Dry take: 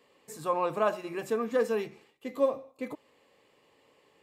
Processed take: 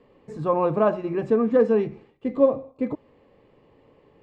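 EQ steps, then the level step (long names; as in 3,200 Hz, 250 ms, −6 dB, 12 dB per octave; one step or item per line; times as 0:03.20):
high-frequency loss of the air 97 metres
spectral tilt −4 dB per octave
+4.5 dB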